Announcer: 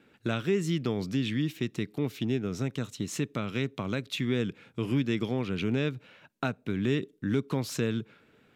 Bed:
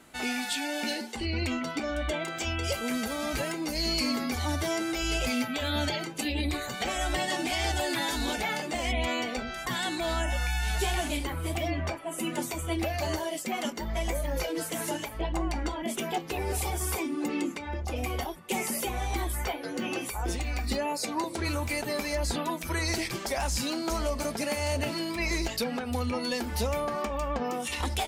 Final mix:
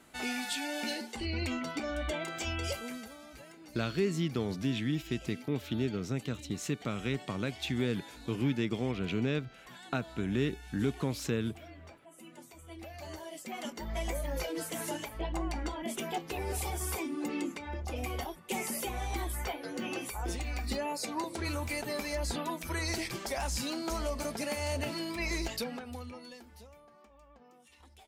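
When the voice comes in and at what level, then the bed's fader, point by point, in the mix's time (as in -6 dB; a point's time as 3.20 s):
3.50 s, -3.0 dB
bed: 2.66 s -4 dB
3.27 s -20 dB
12.49 s -20 dB
13.95 s -4.5 dB
25.55 s -4.5 dB
26.82 s -28 dB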